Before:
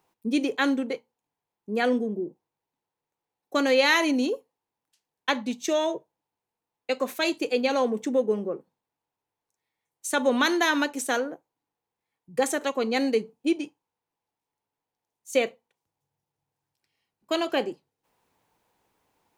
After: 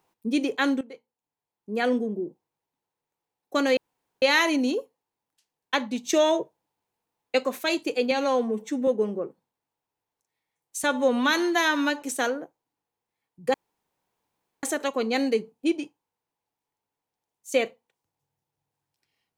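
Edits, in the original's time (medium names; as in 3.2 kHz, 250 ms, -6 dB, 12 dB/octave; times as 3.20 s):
0.81–1.94 s: fade in, from -16.5 dB
3.77 s: insert room tone 0.45 s
5.59–7.00 s: gain +4 dB
7.66–8.17 s: stretch 1.5×
10.13–10.92 s: stretch 1.5×
12.44 s: insert room tone 1.09 s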